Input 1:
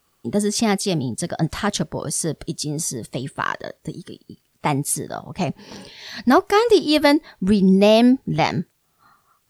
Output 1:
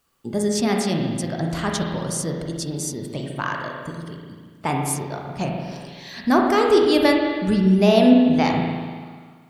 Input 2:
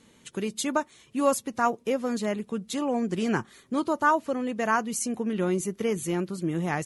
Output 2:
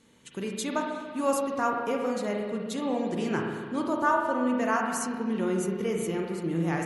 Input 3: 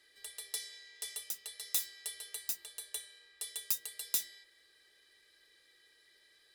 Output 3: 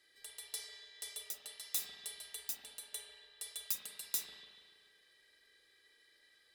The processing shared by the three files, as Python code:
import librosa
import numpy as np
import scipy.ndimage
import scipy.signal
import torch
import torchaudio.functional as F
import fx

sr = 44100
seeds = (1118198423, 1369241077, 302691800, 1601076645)

y = fx.rev_spring(x, sr, rt60_s=1.7, pass_ms=(36, 48), chirp_ms=25, drr_db=0.5)
y = y * librosa.db_to_amplitude(-4.0)